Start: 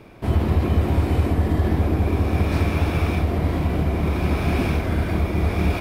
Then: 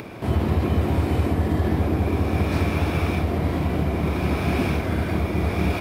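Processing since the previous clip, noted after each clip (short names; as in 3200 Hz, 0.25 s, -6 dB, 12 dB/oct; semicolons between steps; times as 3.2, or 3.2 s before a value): HPF 78 Hz; upward compressor, threshold -28 dBFS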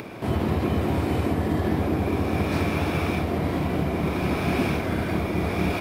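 bell 66 Hz -7.5 dB 1.2 oct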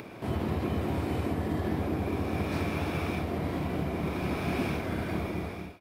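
ending faded out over 0.54 s; gain -6.5 dB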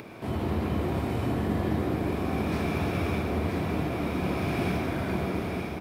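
echo 0.971 s -6.5 dB; on a send at -3.5 dB: reverb RT60 1.9 s, pre-delay 68 ms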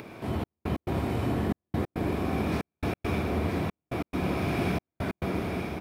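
step gate "xxxx..x.xx" 138 bpm -60 dB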